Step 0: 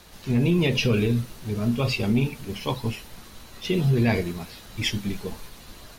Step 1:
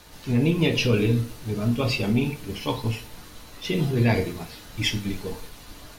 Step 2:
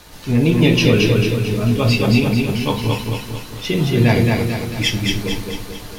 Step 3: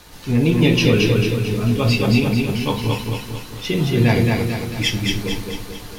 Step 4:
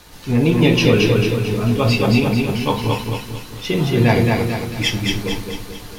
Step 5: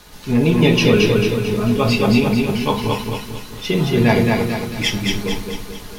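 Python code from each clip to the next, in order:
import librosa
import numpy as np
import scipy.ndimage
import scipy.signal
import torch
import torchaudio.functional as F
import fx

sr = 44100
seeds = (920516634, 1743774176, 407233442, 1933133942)

y1 = fx.rev_fdn(x, sr, rt60_s=0.44, lf_ratio=1.0, hf_ratio=0.75, size_ms=20.0, drr_db=6.0)
y2 = fx.echo_feedback(y1, sr, ms=222, feedback_pct=51, wet_db=-3.0)
y2 = F.gain(torch.from_numpy(y2), 6.0).numpy()
y3 = fx.notch(y2, sr, hz=620.0, q=17.0)
y3 = F.gain(torch.from_numpy(y3), -1.5).numpy()
y4 = fx.dynamic_eq(y3, sr, hz=820.0, q=0.72, threshold_db=-31.0, ratio=4.0, max_db=5)
y5 = y4 + 0.34 * np.pad(y4, (int(4.8 * sr / 1000.0), 0))[:len(y4)]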